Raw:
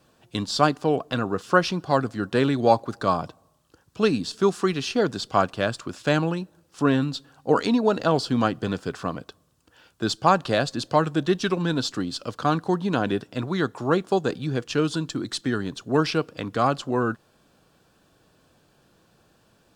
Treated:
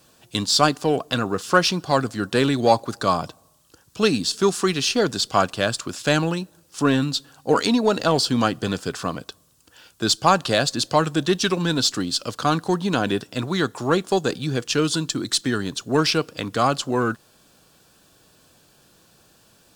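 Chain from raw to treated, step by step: treble shelf 3.5 kHz +12 dB; in parallel at -12 dB: hard clipper -19.5 dBFS, distortion -7 dB

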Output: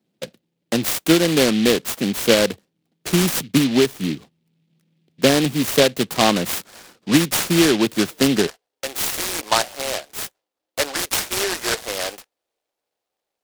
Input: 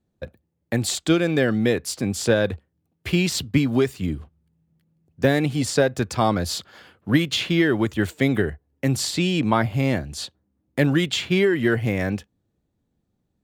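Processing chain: high-pass 160 Hz 24 dB/octave, from 8.47 s 540 Hz; delay time shaken by noise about 2.9 kHz, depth 0.13 ms; trim +4 dB

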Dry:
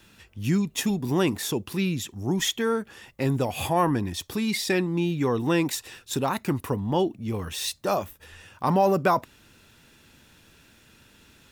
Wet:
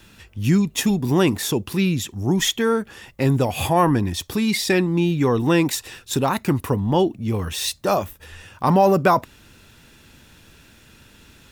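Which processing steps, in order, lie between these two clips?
bass shelf 90 Hz +6 dB; trim +5 dB

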